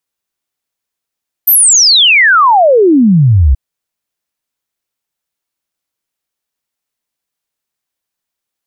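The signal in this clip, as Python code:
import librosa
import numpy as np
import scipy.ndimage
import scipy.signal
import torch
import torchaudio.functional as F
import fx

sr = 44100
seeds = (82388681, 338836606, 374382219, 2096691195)

y = fx.ess(sr, length_s=2.08, from_hz=14000.0, to_hz=61.0, level_db=-3.5)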